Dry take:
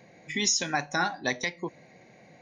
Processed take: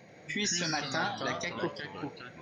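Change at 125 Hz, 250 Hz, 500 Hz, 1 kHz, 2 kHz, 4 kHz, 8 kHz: +0.5 dB, -1.5 dB, -1.5 dB, -3.5 dB, -4.0 dB, -3.0 dB, -6.5 dB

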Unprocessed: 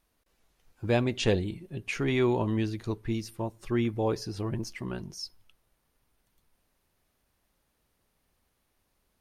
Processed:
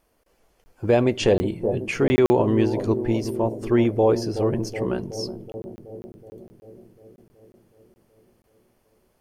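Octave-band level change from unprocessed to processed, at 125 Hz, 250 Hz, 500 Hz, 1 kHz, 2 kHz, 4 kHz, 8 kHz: +5.0 dB, +8.0 dB, +10.5 dB, +8.0 dB, +4.0 dB, +3.5 dB, +4.5 dB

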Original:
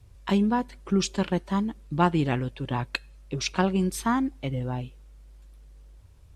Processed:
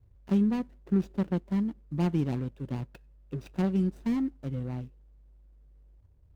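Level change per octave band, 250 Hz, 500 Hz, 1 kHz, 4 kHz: -2.0 dB, -6.5 dB, -15.0 dB, -17.0 dB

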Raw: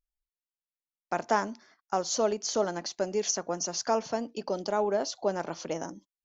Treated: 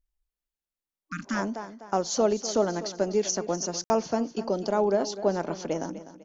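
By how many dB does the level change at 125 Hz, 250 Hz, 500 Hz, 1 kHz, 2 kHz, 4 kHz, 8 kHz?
+6.5 dB, +6.5 dB, +3.5 dB, 0.0 dB, +0.5 dB, 0.0 dB, no reading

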